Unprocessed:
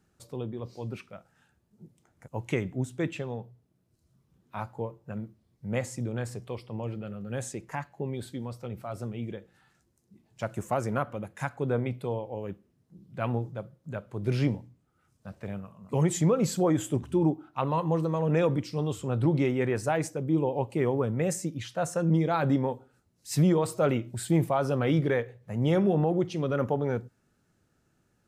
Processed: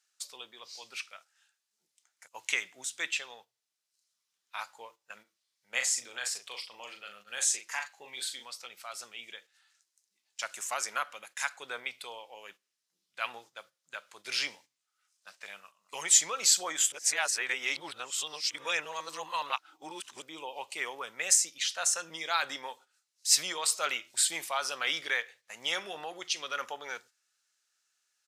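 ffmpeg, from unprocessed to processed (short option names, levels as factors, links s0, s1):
-filter_complex "[0:a]asplit=3[s0][s1][s2];[s0]afade=t=out:st=5.23:d=0.02[s3];[s1]asplit=2[s4][s5];[s5]adelay=39,volume=0.501[s6];[s4][s6]amix=inputs=2:normalize=0,afade=t=in:st=5.23:d=0.02,afade=t=out:st=8.43:d=0.02[s7];[s2]afade=t=in:st=8.43:d=0.02[s8];[s3][s7][s8]amix=inputs=3:normalize=0,asplit=3[s9][s10][s11];[s9]atrim=end=16.922[s12];[s10]atrim=start=16.918:end=20.222,asetpts=PTS-STARTPTS,areverse[s13];[s11]atrim=start=20.218[s14];[s12][s13]acrossfade=d=0.004:c1=hsin:c2=hsin[s15];[s15][s14]acrossfade=d=0.004:c1=hsin:c2=hsin,highpass=1300,equalizer=f=5500:w=0.41:g=15,agate=range=0.355:threshold=0.002:ratio=16:detection=peak"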